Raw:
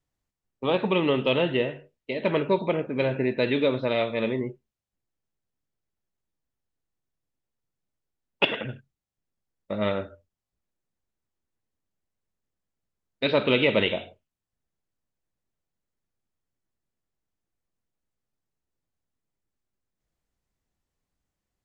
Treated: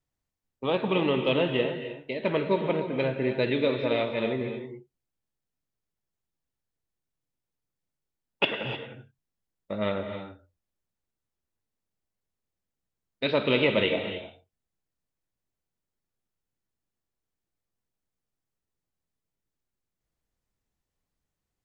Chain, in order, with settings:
reverb whose tail is shaped and stops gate 330 ms rising, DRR 7 dB
level −2.5 dB

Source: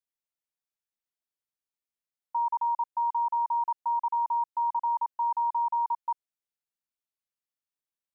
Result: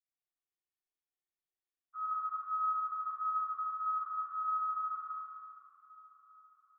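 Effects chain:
partials spread apart or drawn together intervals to 109%
comb filter 3.3 ms, depth 54%
spring reverb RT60 2.3 s, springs 43/54 ms, chirp 55 ms, DRR −6.5 dB
speed change +20%
feedback delay with all-pass diffusion 525 ms, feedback 61%, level −16 dB
level −9 dB

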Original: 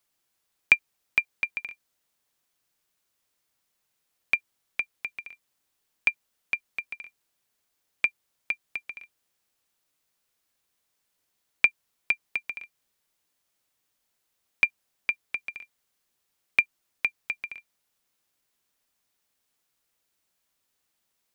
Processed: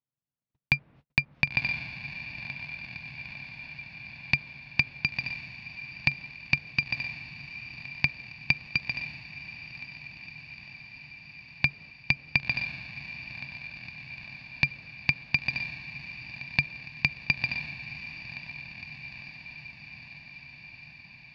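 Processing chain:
lower of the sound and its delayed copy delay 1.1 ms
background noise brown −59 dBFS
noise gate −50 dBFS, range −40 dB
treble cut that deepens with the level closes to 2,100 Hz, closed at −27.5 dBFS
loudspeaker in its box 120–4,900 Hz, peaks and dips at 140 Hz +9 dB, 370 Hz −7 dB, 2,400 Hz +5 dB
on a send: feedback delay with all-pass diffusion 1,025 ms, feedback 70%, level −15 dB
on the sum: boost into a limiter +15.5 dB
level −7 dB

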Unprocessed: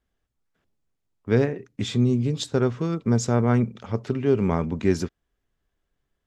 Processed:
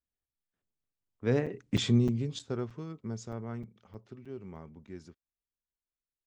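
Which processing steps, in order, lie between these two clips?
source passing by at 0:01.73, 13 m/s, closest 2.5 metres
downsampling to 22,050 Hz
regular buffer underruns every 0.31 s, samples 256, zero, from 0:00.53

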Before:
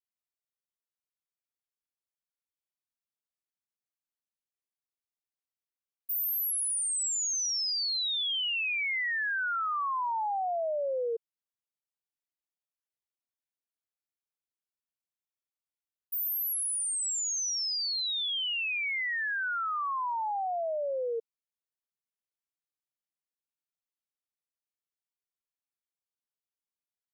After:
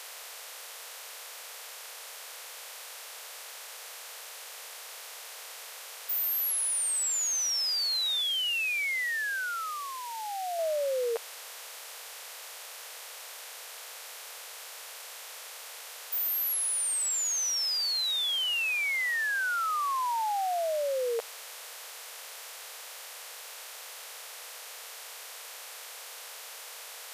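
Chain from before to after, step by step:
compressor on every frequency bin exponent 0.4
0:08.21–0:10.59: parametric band 1,000 Hz −10.5 dB 0.83 octaves

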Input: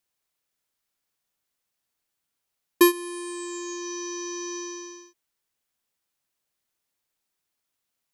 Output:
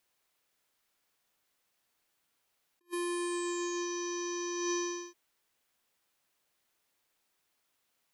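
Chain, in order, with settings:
compressor whose output falls as the input rises −36 dBFS, ratio −0.5
bass and treble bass −5 dB, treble −4 dB

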